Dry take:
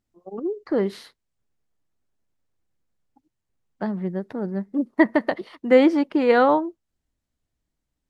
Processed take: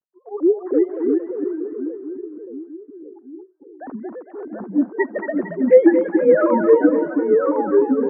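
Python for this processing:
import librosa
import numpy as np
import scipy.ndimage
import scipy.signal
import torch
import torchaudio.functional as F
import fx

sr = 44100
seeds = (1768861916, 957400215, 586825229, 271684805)

y = fx.sine_speech(x, sr)
y = scipy.signal.sosfilt(scipy.signal.butter(4, 1600.0, 'lowpass', fs=sr, output='sos'), y)
y = fx.echo_split(y, sr, split_hz=510.0, low_ms=578, high_ms=227, feedback_pct=52, wet_db=-6.5)
y = fx.echo_pitch(y, sr, ms=263, semitones=-2, count=2, db_per_echo=-3.0)
y = F.gain(torch.from_numpy(y), 2.0).numpy()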